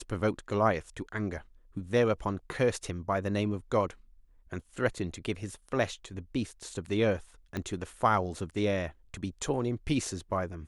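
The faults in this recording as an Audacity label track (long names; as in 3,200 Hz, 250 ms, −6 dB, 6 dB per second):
7.570000	7.570000	click −20 dBFS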